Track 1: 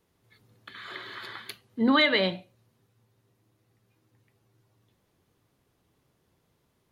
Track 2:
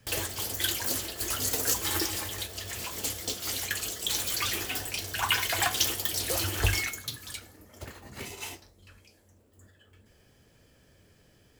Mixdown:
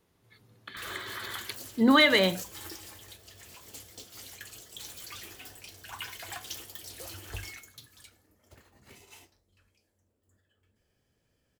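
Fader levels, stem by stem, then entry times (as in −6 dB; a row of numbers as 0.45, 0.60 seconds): +1.5, −14.0 decibels; 0.00, 0.70 seconds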